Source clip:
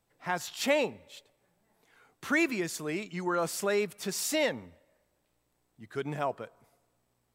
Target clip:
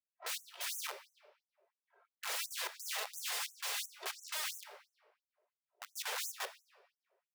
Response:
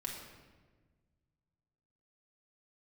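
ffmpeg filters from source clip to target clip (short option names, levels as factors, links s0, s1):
-filter_complex "[0:a]lowpass=9700,adynamicsmooth=sensitivity=5:basefreq=620,lowshelf=f=150:g=11,aecho=1:1:3.1:0.92,acompressor=threshold=0.0398:ratio=16,equalizer=f=2000:t=o:w=1.5:g=-3,aeval=exprs='(mod(79.4*val(0)+1,2)-1)/79.4':c=same,asplit=2[s0][s1];[1:a]atrim=start_sample=2205[s2];[s1][s2]afir=irnorm=-1:irlink=0,volume=0.596[s3];[s0][s3]amix=inputs=2:normalize=0,afftfilt=real='re*gte(b*sr/1024,360*pow(6000/360,0.5+0.5*sin(2*PI*2.9*pts/sr)))':imag='im*gte(b*sr/1024,360*pow(6000/360,0.5+0.5*sin(2*PI*2.9*pts/sr)))':win_size=1024:overlap=0.75,volume=1.26"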